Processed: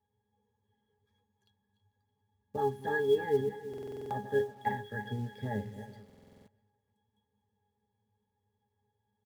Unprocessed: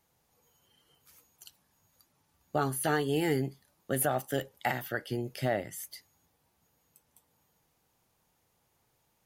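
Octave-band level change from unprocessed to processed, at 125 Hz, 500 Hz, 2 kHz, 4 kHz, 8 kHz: -4.0 dB, +1.5 dB, -3.0 dB, -8.0 dB, under -20 dB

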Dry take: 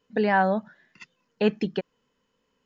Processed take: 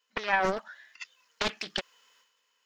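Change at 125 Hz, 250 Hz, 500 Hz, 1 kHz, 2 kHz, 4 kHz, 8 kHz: -12.5 dB, -14.5 dB, -8.5 dB, -5.0 dB, -1.0 dB, +5.5 dB, n/a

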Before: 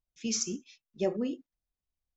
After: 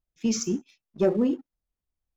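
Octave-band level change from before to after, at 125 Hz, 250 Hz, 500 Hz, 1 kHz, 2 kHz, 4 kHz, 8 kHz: +9.0 dB, +9.0 dB, +7.5 dB, +6.0 dB, +3.5 dB, 0.0 dB, n/a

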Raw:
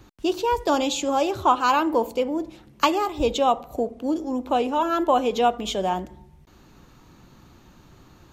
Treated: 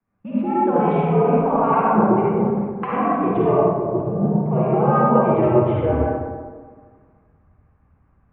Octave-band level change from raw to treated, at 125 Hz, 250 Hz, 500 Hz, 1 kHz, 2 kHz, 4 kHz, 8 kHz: +20.5 dB, +7.0 dB, +5.5 dB, +2.0 dB, -1.5 dB, under -15 dB, under -40 dB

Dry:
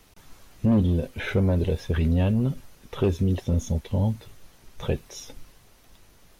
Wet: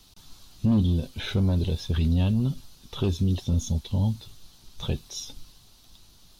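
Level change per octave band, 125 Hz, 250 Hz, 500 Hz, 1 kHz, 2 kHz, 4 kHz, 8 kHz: -0.5 dB, -1.5 dB, -7.5 dB, -4.0 dB, -6.0 dB, +5.5 dB, n/a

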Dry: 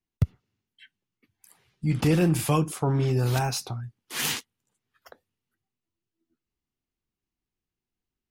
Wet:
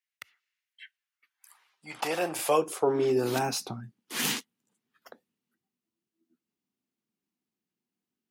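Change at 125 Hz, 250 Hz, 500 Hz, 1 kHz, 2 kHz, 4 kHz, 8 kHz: -17.5, -7.5, +3.0, +1.0, -1.0, -1.5, -1.5 dB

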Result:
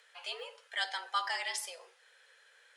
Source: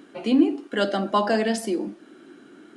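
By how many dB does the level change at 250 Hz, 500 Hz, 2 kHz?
under -40 dB, -24.5 dB, -4.5 dB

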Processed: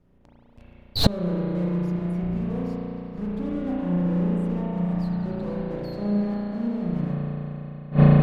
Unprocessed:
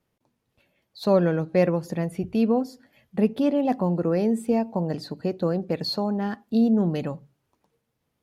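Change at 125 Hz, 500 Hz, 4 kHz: +7.0, -6.5, +3.0 dB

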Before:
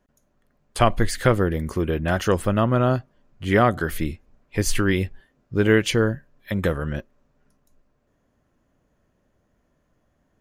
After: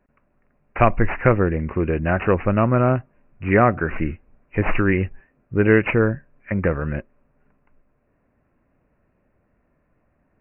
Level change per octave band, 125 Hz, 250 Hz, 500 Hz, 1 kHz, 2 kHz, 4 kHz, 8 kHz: +2.0 dB, +2.0 dB, +2.0 dB, +2.0 dB, +2.5 dB, under -10 dB, under -40 dB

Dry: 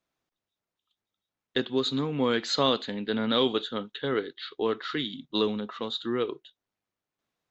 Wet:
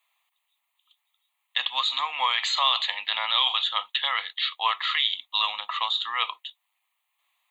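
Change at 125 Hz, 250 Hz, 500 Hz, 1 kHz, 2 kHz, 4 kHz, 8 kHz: under -40 dB, under -35 dB, -17.5 dB, +8.0 dB, +8.0 dB, +8.5 dB, n/a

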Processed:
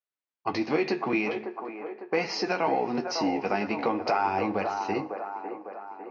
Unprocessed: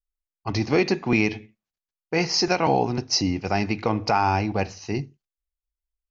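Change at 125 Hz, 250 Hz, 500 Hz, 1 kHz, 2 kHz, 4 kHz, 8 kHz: -14.5 dB, -4.5 dB, -2.5 dB, -2.5 dB, -4.0 dB, -9.5 dB, n/a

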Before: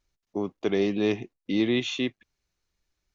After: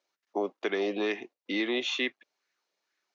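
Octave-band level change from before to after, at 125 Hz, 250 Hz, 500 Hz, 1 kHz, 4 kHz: under -15 dB, -7.5 dB, -3.5 dB, +3.0 dB, 0.0 dB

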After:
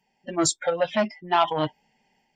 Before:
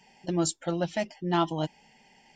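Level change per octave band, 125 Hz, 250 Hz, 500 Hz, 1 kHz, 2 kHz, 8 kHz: -4.0, 0.0, +6.0, +7.5, +7.5, +7.0 dB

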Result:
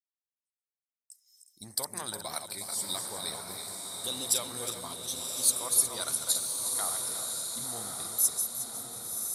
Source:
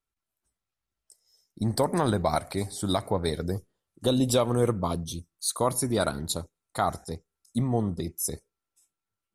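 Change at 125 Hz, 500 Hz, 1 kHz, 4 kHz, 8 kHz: -21.5, -15.5, -11.0, +1.5, +7.5 dB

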